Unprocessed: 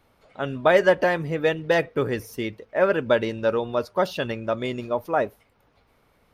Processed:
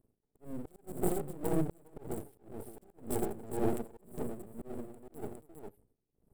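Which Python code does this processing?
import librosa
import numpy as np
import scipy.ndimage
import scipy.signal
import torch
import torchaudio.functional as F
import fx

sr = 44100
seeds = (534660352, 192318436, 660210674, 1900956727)

p1 = fx.quant_companded(x, sr, bits=2)
p2 = x + (p1 * 10.0 ** (-4.5 / 20.0))
p3 = fx.brickwall_bandstop(p2, sr, low_hz=470.0, high_hz=7500.0)
p4 = fx.peak_eq(p3, sr, hz=79.0, db=-12.0, octaves=0.3)
p5 = p4 + fx.echo_multitap(p4, sr, ms=(40, 48, 82, 281, 409), db=(-20.0, -18.0, -13.5, -16.5, -4.0), dry=0)
p6 = fx.auto_swell(p5, sr, attack_ms=483.0)
p7 = fx.high_shelf(p6, sr, hz=4800.0, db=-6.5)
p8 = np.maximum(p7, 0.0)
y = p8 * 10.0 ** (-19 * (0.5 - 0.5 * np.cos(2.0 * np.pi * 1.9 * np.arange(len(p8)) / sr)) / 20.0)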